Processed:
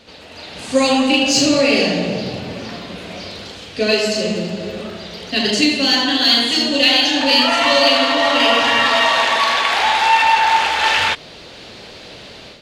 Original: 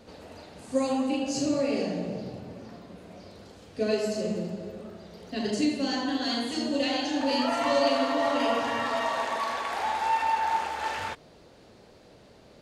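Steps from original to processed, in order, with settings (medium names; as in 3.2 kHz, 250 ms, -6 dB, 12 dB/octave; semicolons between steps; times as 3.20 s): peaking EQ 3.2 kHz +14 dB 2 oct; level rider gain up to 11.5 dB; in parallel at -9 dB: saturation -17 dBFS, distortion -9 dB; on the sum: trim -1 dB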